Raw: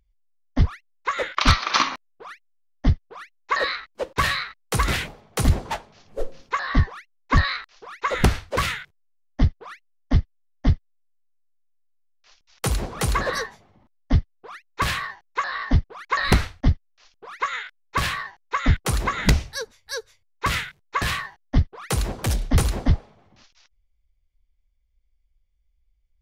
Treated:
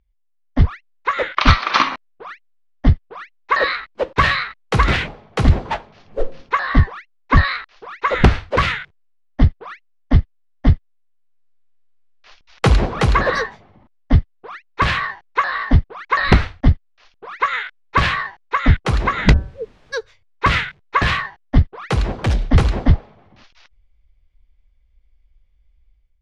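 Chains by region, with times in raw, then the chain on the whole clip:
0:19.32–0:19.92: Butterworth low-pass 520 Hz + hum removal 191.3 Hz, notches 9 + background noise pink −59 dBFS
whole clip: low-pass filter 3,400 Hz 12 dB per octave; automatic gain control

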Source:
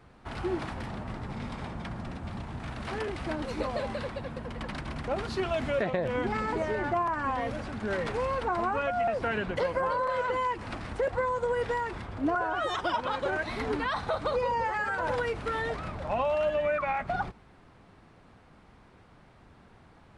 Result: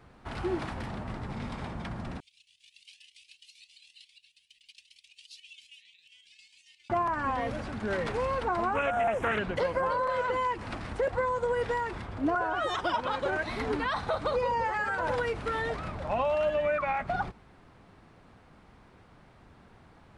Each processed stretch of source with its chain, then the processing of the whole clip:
0:02.20–0:06.90: elliptic high-pass filter 2,700 Hz, stop band 50 dB + square-wave tremolo 7.4 Hz, depth 60%, duty 65% + flanger whose copies keep moving one way rising 1.1 Hz
0:08.75–0:09.39: Butterworth band-reject 4,500 Hz, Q 1.4 + high-shelf EQ 2,600 Hz +9 dB + highs frequency-modulated by the lows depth 0.28 ms
whole clip: no processing

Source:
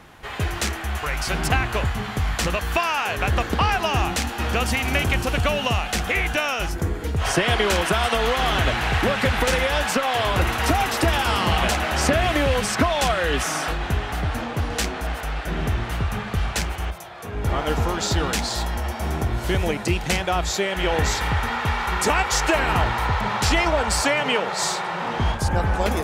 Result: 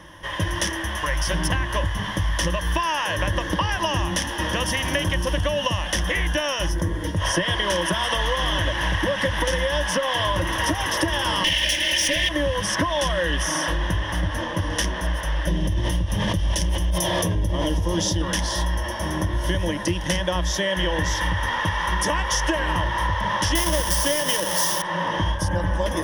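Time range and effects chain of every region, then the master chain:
0:11.44–0:12.29: lower of the sound and its delayed copy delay 3.3 ms + high shelf with overshoot 1,700 Hz +10 dB, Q 3
0:15.47–0:18.22: parametric band 1,400 Hz −12.5 dB 1.4 octaves + envelope flattener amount 100%
0:23.55–0:24.82: each half-wave held at its own peak + high-shelf EQ 5,000 Hz +11 dB
whole clip: EQ curve with evenly spaced ripples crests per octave 1.2, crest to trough 15 dB; downward compressor, threshold −19 dBFS

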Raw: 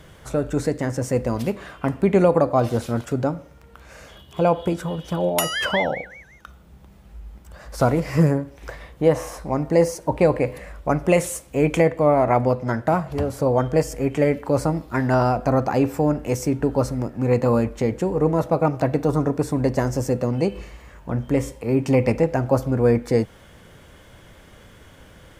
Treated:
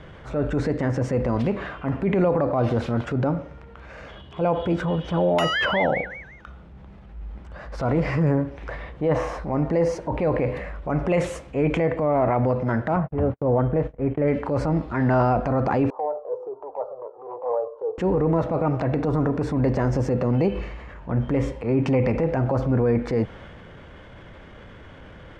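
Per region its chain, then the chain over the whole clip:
0:12.96–0:14.28: running median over 9 samples + noise gate −32 dBFS, range −58 dB + head-to-tape spacing loss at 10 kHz 31 dB
0:15.90–0:17.98: elliptic band-pass filter 430–1,100 Hz + flanger whose copies keep moving one way falling 1.4 Hz
whole clip: low-pass filter 2,700 Hz 12 dB per octave; brickwall limiter −15.5 dBFS; transient designer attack −6 dB, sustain +3 dB; level +4 dB

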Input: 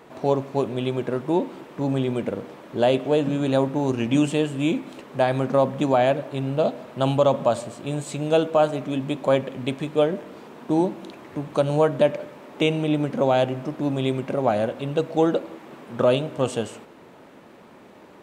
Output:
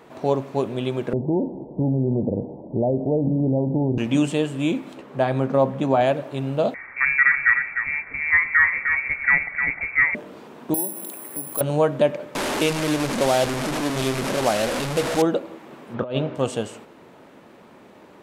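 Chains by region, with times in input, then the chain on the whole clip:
0:01.13–0:03.98: spectral tilt −3.5 dB per octave + downward compressor 5 to 1, threshold −17 dBFS + Butterworth low-pass 900 Hz 72 dB per octave
0:04.94–0:06.01: high-pass filter 43 Hz + high-shelf EQ 3,100 Hz −8 dB + double-tracking delay 15 ms −11 dB
0:06.74–0:10.15: parametric band 1,600 Hz +2.5 dB 2 octaves + single-tap delay 304 ms −6.5 dB + voice inversion scrambler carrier 2,500 Hz
0:10.74–0:11.61: high-pass filter 200 Hz + downward compressor 2 to 1, threshold −36 dBFS + bad sample-rate conversion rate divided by 4×, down filtered, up zero stuff
0:12.35–0:15.22: linear delta modulator 64 kbit/s, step −18.5 dBFS + parametric band 87 Hz −5 dB 1.9 octaves
0:15.94–0:16.35: high-frequency loss of the air 190 metres + compressor whose output falls as the input rises −23 dBFS, ratio −0.5
whole clip: no processing

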